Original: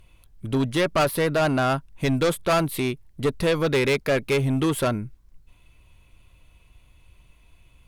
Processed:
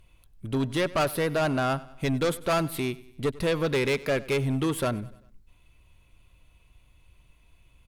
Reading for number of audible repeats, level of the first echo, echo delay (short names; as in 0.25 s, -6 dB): 3, -20.0 dB, 97 ms